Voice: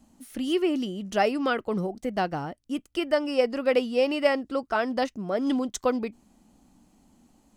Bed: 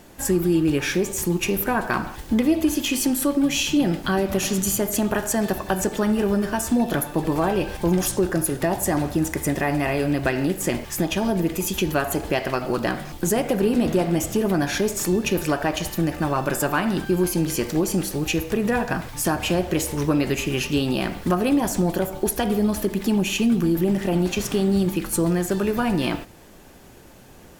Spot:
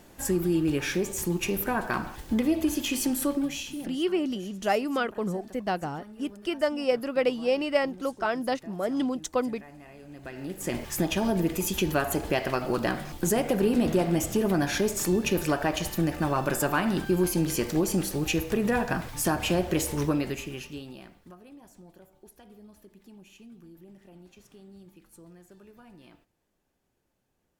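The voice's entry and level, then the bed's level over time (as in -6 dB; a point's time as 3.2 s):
3.50 s, -2.0 dB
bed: 3.32 s -5.5 dB
4.12 s -26 dB
10.02 s -26 dB
10.83 s -3.5 dB
20.02 s -3.5 dB
21.41 s -30 dB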